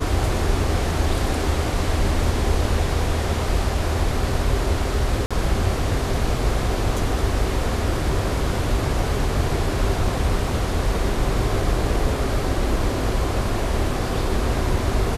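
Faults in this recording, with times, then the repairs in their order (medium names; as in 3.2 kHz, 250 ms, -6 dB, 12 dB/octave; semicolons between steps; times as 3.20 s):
5.26–5.31 s: dropout 46 ms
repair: interpolate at 5.26 s, 46 ms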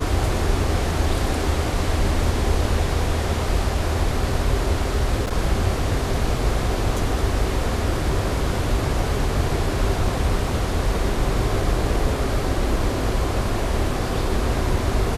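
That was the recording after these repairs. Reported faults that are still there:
nothing left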